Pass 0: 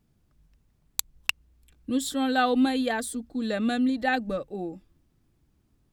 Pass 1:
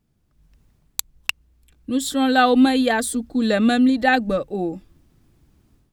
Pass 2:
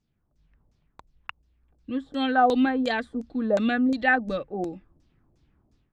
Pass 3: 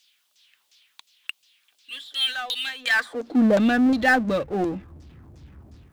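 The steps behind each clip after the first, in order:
AGC gain up to 11 dB; gain -1 dB
LFO low-pass saw down 2.8 Hz 520–6700 Hz; gain -7.5 dB
high-pass sweep 3200 Hz -> 70 Hz, 2.75–3.71; power-law curve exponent 0.7

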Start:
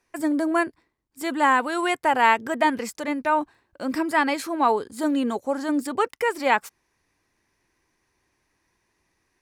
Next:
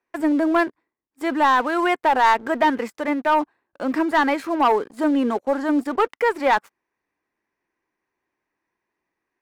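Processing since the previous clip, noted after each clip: three-band isolator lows -14 dB, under 190 Hz, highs -14 dB, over 2700 Hz; sample leveller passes 2; gain -2.5 dB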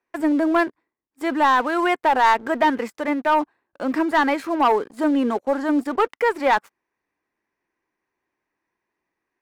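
nothing audible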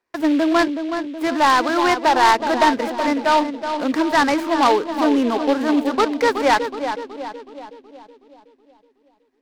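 on a send: darkening echo 0.372 s, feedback 56%, low-pass 1400 Hz, level -7 dB; on the sum: noise-modulated delay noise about 2600 Hz, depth 0.035 ms; gain +2 dB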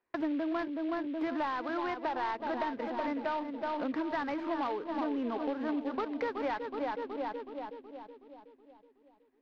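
compressor 10:1, threshold -26 dBFS, peak gain reduction 15.5 dB; air absorption 260 m; gain -4 dB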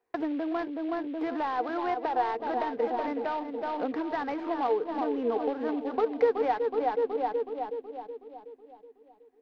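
small resonant body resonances 460/740 Hz, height 15 dB, ringing for 60 ms

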